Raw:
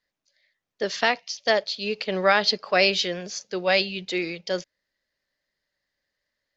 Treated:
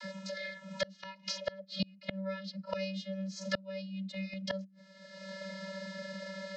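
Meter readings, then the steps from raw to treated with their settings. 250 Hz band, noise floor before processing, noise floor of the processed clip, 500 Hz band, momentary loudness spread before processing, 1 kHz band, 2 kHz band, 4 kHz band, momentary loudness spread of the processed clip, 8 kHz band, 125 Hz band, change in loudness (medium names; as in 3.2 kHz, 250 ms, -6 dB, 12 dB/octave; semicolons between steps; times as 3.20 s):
-5.5 dB, -84 dBFS, -59 dBFS, -14.0 dB, 11 LU, -20.5 dB, -16.5 dB, -15.5 dB, 6 LU, no reading, -2.5 dB, -16.0 dB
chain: vocoder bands 32, square 192 Hz; inverted gate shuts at -30 dBFS, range -35 dB; three bands compressed up and down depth 100%; trim +17 dB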